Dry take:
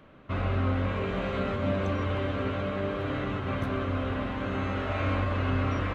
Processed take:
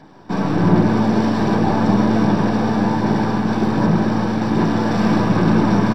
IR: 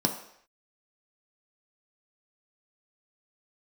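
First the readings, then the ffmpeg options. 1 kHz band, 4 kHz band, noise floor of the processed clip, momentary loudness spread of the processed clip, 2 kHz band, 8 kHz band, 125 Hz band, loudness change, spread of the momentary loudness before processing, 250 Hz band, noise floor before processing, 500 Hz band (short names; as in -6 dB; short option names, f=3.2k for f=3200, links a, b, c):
+13.0 dB, +9.0 dB, -34 dBFS, 4 LU, +8.0 dB, n/a, +10.0 dB, +13.0 dB, 4 LU, +17.0 dB, -41 dBFS, +9.5 dB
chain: -filter_complex "[0:a]bandreject=f=50:t=h:w=6,bandreject=f=100:t=h:w=6,aeval=exprs='abs(val(0))':c=same,aphaser=in_gain=1:out_gain=1:delay=4.6:decay=0.32:speed=1.3:type=sinusoidal,asplit=6[a][b][c][d][e][f];[b]adelay=156,afreqshift=110,volume=-10dB[g];[c]adelay=312,afreqshift=220,volume=-16dB[h];[d]adelay=468,afreqshift=330,volume=-22dB[i];[e]adelay=624,afreqshift=440,volume=-28.1dB[j];[f]adelay=780,afreqshift=550,volume=-34.1dB[k];[a][g][h][i][j][k]amix=inputs=6:normalize=0[l];[1:a]atrim=start_sample=2205[m];[l][m]afir=irnorm=-1:irlink=0"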